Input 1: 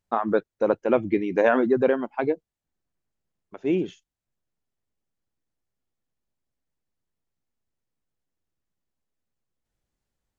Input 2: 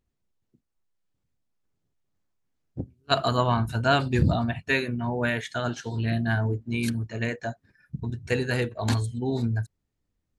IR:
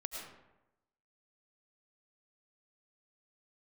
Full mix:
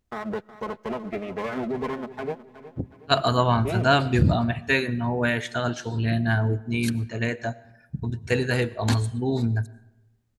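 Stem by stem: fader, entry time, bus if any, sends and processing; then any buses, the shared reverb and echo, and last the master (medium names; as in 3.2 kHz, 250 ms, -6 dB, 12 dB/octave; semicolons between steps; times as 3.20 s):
-3.5 dB, 0.00 s, send -23 dB, echo send -14.5 dB, comb filter that takes the minimum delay 4.7 ms; high-pass 58 Hz; peak limiter -17.5 dBFS, peak gain reduction 9 dB
+1.5 dB, 0.00 s, send -16 dB, no echo send, none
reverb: on, RT60 0.95 s, pre-delay 65 ms
echo: feedback delay 367 ms, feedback 42%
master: none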